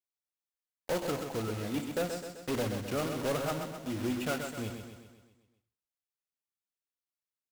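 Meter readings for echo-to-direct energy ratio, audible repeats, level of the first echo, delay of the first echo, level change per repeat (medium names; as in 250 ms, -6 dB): -5.0 dB, 6, -6.5 dB, 129 ms, -5.5 dB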